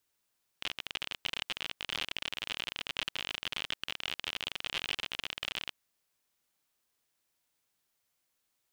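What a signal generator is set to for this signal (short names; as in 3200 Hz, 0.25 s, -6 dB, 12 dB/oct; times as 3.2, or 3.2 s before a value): random clicks 52/s -18.5 dBFS 5.09 s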